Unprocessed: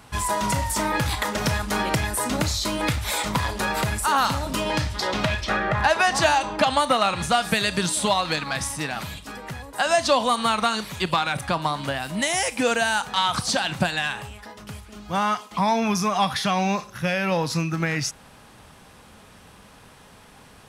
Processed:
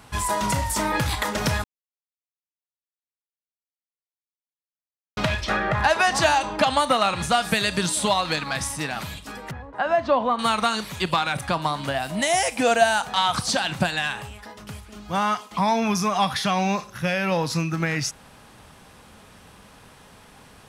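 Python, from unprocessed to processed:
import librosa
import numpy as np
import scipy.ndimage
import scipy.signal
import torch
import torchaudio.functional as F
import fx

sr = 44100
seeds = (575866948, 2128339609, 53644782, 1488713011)

y = fx.lowpass(x, sr, hz=1600.0, slope=12, at=(9.51, 10.39))
y = fx.peak_eq(y, sr, hz=690.0, db=9.5, octaves=0.24, at=(11.94, 13.31))
y = fx.edit(y, sr, fx.silence(start_s=1.64, length_s=3.53), tone=tone)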